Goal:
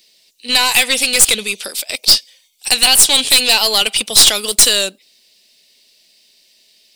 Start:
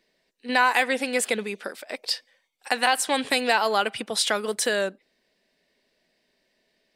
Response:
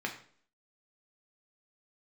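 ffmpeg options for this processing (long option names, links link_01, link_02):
-af "aexciter=amount=10.7:drive=2.8:freq=2500,aeval=exprs='(tanh(2.24*val(0)+0.3)-tanh(0.3))/2.24':channel_layout=same,volume=3.5dB"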